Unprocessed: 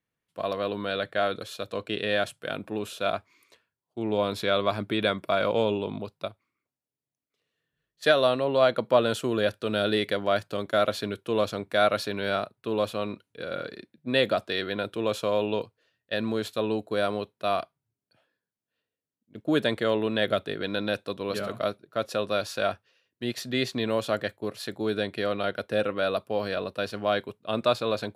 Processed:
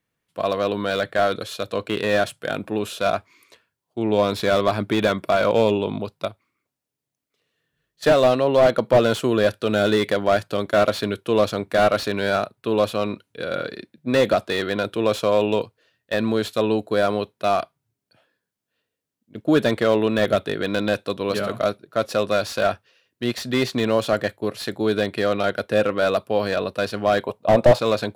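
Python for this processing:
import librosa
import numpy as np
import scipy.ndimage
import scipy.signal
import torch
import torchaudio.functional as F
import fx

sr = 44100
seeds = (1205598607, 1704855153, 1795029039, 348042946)

y = fx.band_shelf(x, sr, hz=710.0, db=12.0, octaves=1.3, at=(27.23, 27.79))
y = fx.slew_limit(y, sr, full_power_hz=89.0)
y = y * librosa.db_to_amplitude(7.0)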